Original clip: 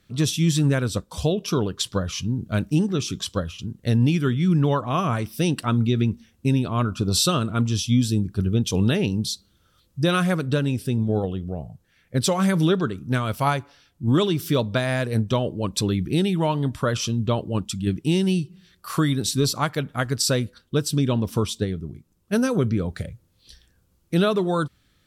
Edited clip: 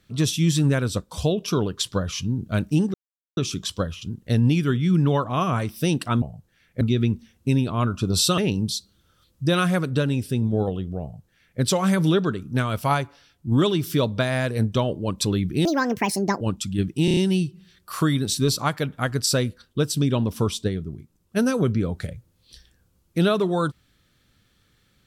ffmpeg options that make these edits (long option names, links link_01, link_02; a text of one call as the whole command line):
ffmpeg -i in.wav -filter_complex "[0:a]asplit=11[link_01][link_02][link_03][link_04][link_05][link_06][link_07][link_08][link_09][link_10][link_11];[link_01]atrim=end=2.94,asetpts=PTS-STARTPTS,afade=type=out:start_time=2.936:duration=0.004:curve=hsin,apad=pad_dur=0.43[link_12];[link_02]atrim=start=2.94:end=5.792,asetpts=PTS-STARTPTS,afade=type=in:duration=0.004:curve=hsin[link_13];[link_03]atrim=start=11.578:end=12.172[link_14];[link_04]atrim=start=5.788:end=7.362[link_15];[link_05]atrim=start=8.938:end=16.214[link_16];[link_06]atrim=start=16.21:end=17.49,asetpts=PTS-STARTPTS,asetrate=74529,aresample=44100,atrim=end_sample=33401,asetpts=PTS-STARTPTS[link_17];[link_07]atrim=start=17.486:end=18.162[link_18];[link_08]atrim=start=18.128:end=18.162[link_19];[link_09]atrim=start=18.128:end=18.162[link_20];[link_10]atrim=start=18.128:end=18.162[link_21];[link_11]atrim=start=18.128[link_22];[link_12][link_13]concat=n=2:v=0:a=1[link_23];[link_23][link_14]acrossfade=duration=0.004:curve1=hsin:curve2=hsin[link_24];[link_24][link_15]acrossfade=duration=0.004:curve1=hsin:curve2=hsin[link_25];[link_25][link_16]acrossfade=duration=0.004:curve1=hsin:curve2=hsin[link_26];[link_26][link_17]acrossfade=duration=0.004:curve1=hsin:curve2=hsin[link_27];[link_27][link_18]acrossfade=duration=0.004:curve1=hsin:curve2=hsin[link_28];[link_28][link_19]acrossfade=duration=0.004:curve1=hsin:curve2=hsin[link_29];[link_29][link_20]acrossfade=duration=0.004:curve1=hsin:curve2=hsin[link_30];[link_30][link_21]acrossfade=duration=0.004:curve1=hsin:curve2=hsin[link_31];[link_31][link_22]acrossfade=duration=0.004:curve1=hsin:curve2=hsin" out.wav